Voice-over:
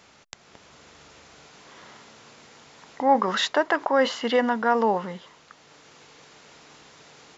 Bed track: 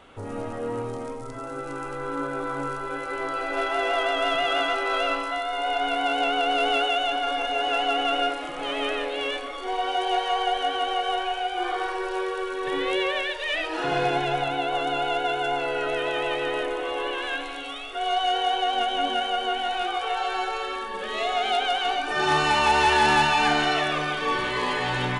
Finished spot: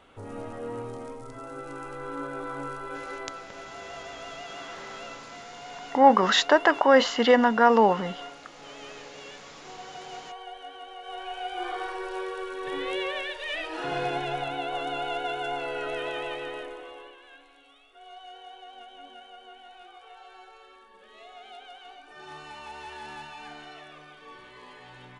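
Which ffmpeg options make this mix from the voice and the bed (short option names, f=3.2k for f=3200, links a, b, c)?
-filter_complex "[0:a]adelay=2950,volume=3dB[a];[1:a]volume=6dB,afade=t=out:st=3.07:d=0.41:silence=0.266073,afade=t=in:st=11:d=0.52:silence=0.266073,afade=t=out:st=16.06:d=1.11:silence=0.149624[b];[a][b]amix=inputs=2:normalize=0"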